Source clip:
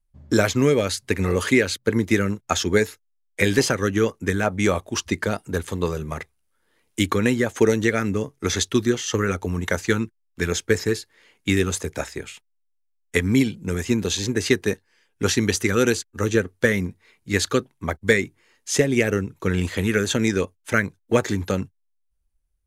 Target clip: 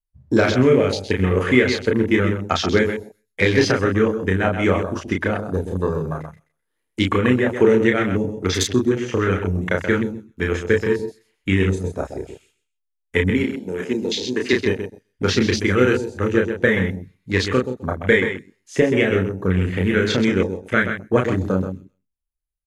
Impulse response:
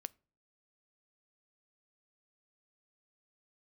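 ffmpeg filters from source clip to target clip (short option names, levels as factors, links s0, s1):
-filter_complex "[0:a]asettb=1/sr,asplit=3[s0][s1][s2];[s0]atrim=end=13.304[s3];[s1]atrim=start=13.3:end=14.53,asetpts=PTS-STARTPTS,afade=t=in:d=0.004:c=qsin,afade=t=out:st=1.226:d=0.004:c=qsin,highpass=260[s4];[s2]atrim=start=14.526[s5];[s3][s4]acrossfade=d=0.004:c1=hsin:c2=qsin[s6];[s6][s5]acrossfade=d=0.004:c1=qsin:c2=hsin,aecho=1:1:129|258|387:0.398|0.0796|0.0159,asplit=2[s7][s8];[1:a]atrim=start_sample=2205,adelay=32[s9];[s8][s9]afir=irnorm=-1:irlink=0,volume=1.06[s10];[s7][s10]amix=inputs=2:normalize=0,acrossover=split=9200[s11][s12];[s12]acompressor=threshold=0.00178:ratio=4:attack=1:release=60[s13];[s11][s13]amix=inputs=2:normalize=0,equalizer=f=11000:w=1.8:g=7.5,afwtdn=0.0355,volume=1.12"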